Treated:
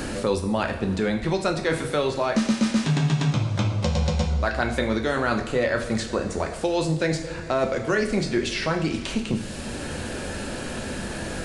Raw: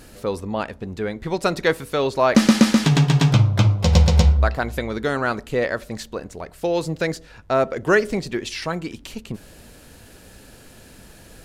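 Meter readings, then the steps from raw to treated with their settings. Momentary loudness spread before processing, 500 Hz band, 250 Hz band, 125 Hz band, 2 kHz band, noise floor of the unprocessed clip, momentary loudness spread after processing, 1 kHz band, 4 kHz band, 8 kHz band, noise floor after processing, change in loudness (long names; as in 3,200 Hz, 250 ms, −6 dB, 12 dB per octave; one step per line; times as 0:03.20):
17 LU, −2.0 dB, −3.0 dB, −6.0 dB, −2.0 dB, −47 dBFS, 9 LU, −3.0 dB, −2.5 dB, −2.0 dB, −34 dBFS, −5.0 dB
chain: downsampling to 22,050 Hz
reversed playback
downward compressor, threshold −24 dBFS, peak gain reduction 15 dB
reversed playback
coupled-rooms reverb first 0.53 s, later 3.7 s, from −19 dB, DRR 3 dB
multiband upward and downward compressor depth 70%
level +3 dB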